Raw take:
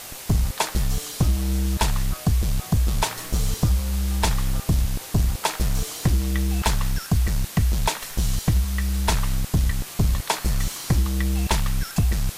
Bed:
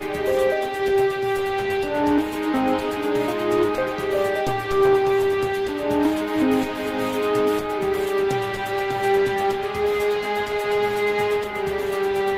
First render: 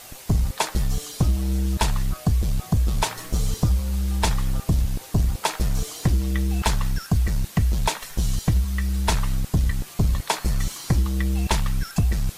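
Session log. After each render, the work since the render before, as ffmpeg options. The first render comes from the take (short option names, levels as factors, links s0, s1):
-af "afftdn=nr=6:nf=-38"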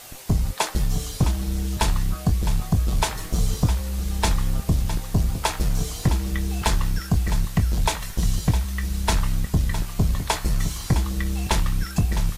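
-filter_complex "[0:a]asplit=2[s0][s1];[s1]adelay=23,volume=0.299[s2];[s0][s2]amix=inputs=2:normalize=0,aecho=1:1:660:0.282"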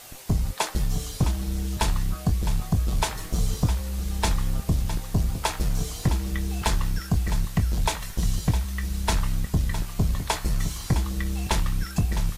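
-af "volume=0.75"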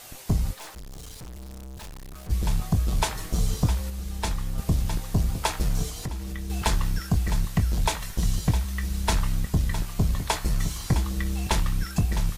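-filter_complex "[0:a]asplit=3[s0][s1][s2];[s0]afade=t=out:st=0.53:d=0.02[s3];[s1]aeval=exprs='(tanh(89.1*val(0)+0.45)-tanh(0.45))/89.1':c=same,afade=t=in:st=0.53:d=0.02,afade=t=out:st=2.29:d=0.02[s4];[s2]afade=t=in:st=2.29:d=0.02[s5];[s3][s4][s5]amix=inputs=3:normalize=0,asettb=1/sr,asplit=3[s6][s7][s8];[s6]atrim=end=5.894[s9];[s7]atrim=start=5.89:end=6.5,asetpts=PTS-STARTPTS,afade=t=in:d=0.004:c=qsin,afade=t=out:st=0.606:d=0.004:c=qsin,acompressor=threshold=0.0282:ratio=3:attack=3.2:release=140:knee=1:detection=peak[s10];[s8]atrim=start=6.496[s11];[s9][s10]acrossfade=d=0.004:c1=hsin:c2=qsin[s12];[s12][s11]acrossfade=d=0.004:c1=qsin:c2=hsin,asplit=3[s13][s14][s15];[s13]atrim=end=3.902[s16];[s14]atrim=start=3.898:end=4.582,asetpts=PTS-STARTPTS,volume=0.596[s17];[s15]atrim=start=4.578[s18];[s16][s17]acrossfade=d=0.004:c1=hsin:c2=hsin[s19];[s19][s18]acrossfade=d=0.004:c1=hsin:c2=hsin"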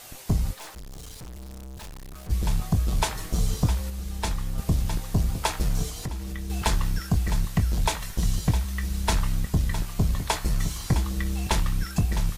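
-af anull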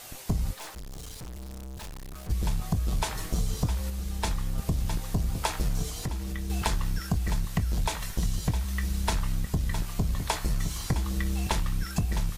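-af "acompressor=threshold=0.0708:ratio=6"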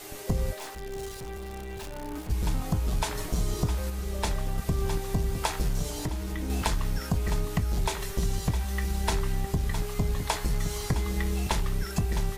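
-filter_complex "[1:a]volume=0.112[s0];[0:a][s0]amix=inputs=2:normalize=0"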